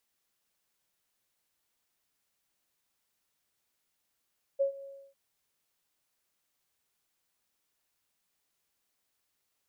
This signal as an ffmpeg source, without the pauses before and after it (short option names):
-f lavfi -i "aevalsrc='0.075*sin(2*PI*551*t)':d=0.551:s=44100,afade=t=in:d=0.021,afade=t=out:st=0.021:d=0.106:silence=0.106,afade=t=out:st=0.25:d=0.301"